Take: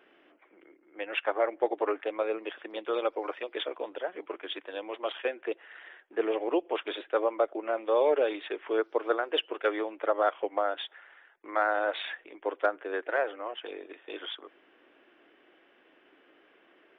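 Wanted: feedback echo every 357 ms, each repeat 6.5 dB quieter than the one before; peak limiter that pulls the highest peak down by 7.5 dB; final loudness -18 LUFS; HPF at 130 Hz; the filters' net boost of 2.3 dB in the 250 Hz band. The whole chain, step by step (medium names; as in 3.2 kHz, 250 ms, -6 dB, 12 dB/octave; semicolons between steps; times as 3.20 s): high-pass 130 Hz; peaking EQ 250 Hz +4 dB; peak limiter -20 dBFS; feedback delay 357 ms, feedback 47%, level -6.5 dB; trim +14.5 dB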